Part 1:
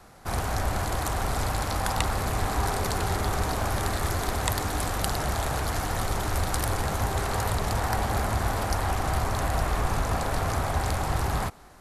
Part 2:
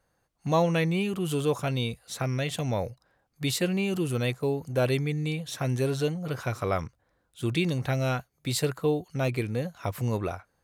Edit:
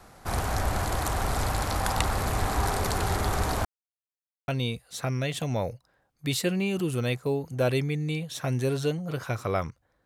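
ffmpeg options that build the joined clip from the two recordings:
ffmpeg -i cue0.wav -i cue1.wav -filter_complex "[0:a]apad=whole_dur=10.05,atrim=end=10.05,asplit=2[link_01][link_02];[link_01]atrim=end=3.65,asetpts=PTS-STARTPTS,afade=type=out:start_time=3.646:duration=0.004:curve=hsin[link_03];[link_02]atrim=start=3.65:end=4.48,asetpts=PTS-STARTPTS,volume=0[link_04];[1:a]atrim=start=1.65:end=7.22,asetpts=PTS-STARTPTS,afade=type=in:duration=0.004:curve=hsin[link_05];[link_03][link_04][link_05]concat=n=3:v=0:a=1" out.wav

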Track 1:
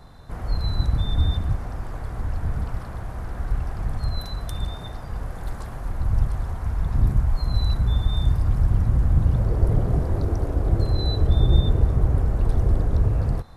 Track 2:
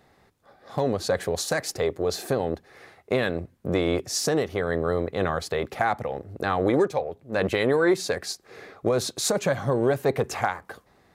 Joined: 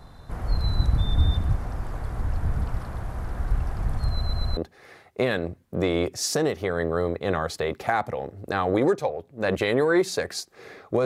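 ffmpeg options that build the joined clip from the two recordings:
ffmpeg -i cue0.wav -i cue1.wav -filter_complex "[0:a]apad=whole_dur=11.05,atrim=end=11.05,asplit=4[link_01][link_02][link_03][link_04];[link_01]atrim=end=4.212[link_05];[link_02]atrim=start=4.088:end=4.212[link_06];[link_03]atrim=start=4.088:end=4.212[link_07];[link_04]atrim=start=4.088:end=4.212[link_08];[1:a]atrim=start=2.488:end=8.97[link_09];[link_05][link_06]acrossfade=duration=0.004:curve1=hsin:curve2=hsin[link_10];[link_10][link_07]acrossfade=duration=0.004:curve1=hsin:curve2=hsin[link_11];[link_11][link_08]acrossfade=duration=0.004:curve1=hsin:curve2=hsin[link_12];[link_12][link_09]acrossfade=duration=0.004:curve1=hsin:curve2=hsin" out.wav

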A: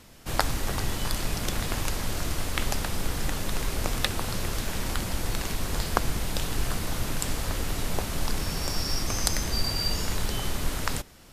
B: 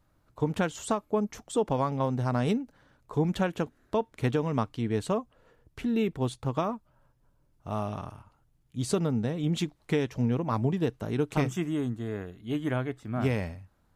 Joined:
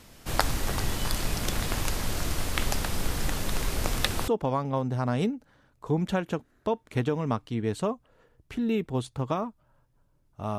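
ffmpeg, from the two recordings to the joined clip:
ffmpeg -i cue0.wav -i cue1.wav -filter_complex "[0:a]apad=whole_dur=10.58,atrim=end=10.58,atrim=end=4.282[link_01];[1:a]atrim=start=1.548:end=7.85[link_02];[link_01][link_02]acrossfade=duration=0.004:curve1=hsin:curve2=hsin" out.wav

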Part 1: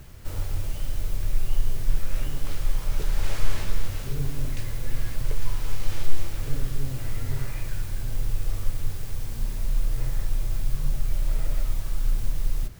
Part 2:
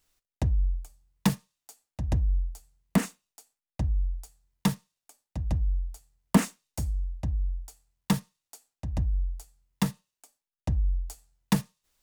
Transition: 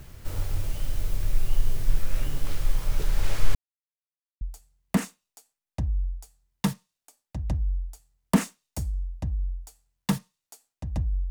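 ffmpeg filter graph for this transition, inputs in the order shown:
ffmpeg -i cue0.wav -i cue1.wav -filter_complex "[0:a]apad=whole_dur=11.3,atrim=end=11.3,asplit=2[link_01][link_02];[link_01]atrim=end=3.55,asetpts=PTS-STARTPTS,afade=type=out:start_time=3.546:duration=0.004:curve=hsin[link_03];[link_02]atrim=start=3.55:end=4.41,asetpts=PTS-STARTPTS,volume=0[link_04];[1:a]atrim=start=2.42:end=9.31,asetpts=PTS-STARTPTS,afade=type=in:duration=0.004:curve=hsin[link_05];[link_03][link_04][link_05]concat=n=3:v=0:a=1" out.wav

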